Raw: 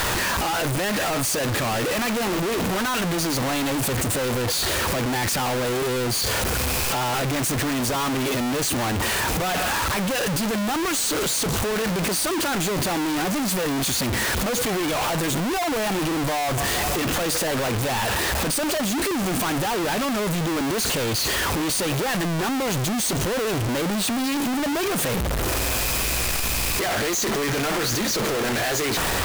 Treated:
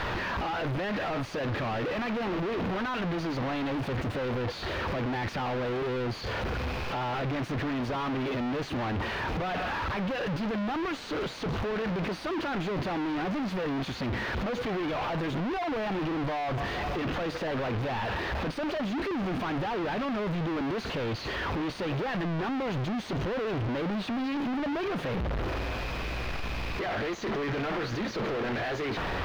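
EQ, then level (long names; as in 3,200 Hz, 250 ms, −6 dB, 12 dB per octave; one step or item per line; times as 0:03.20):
high-frequency loss of the air 290 metres
−5.5 dB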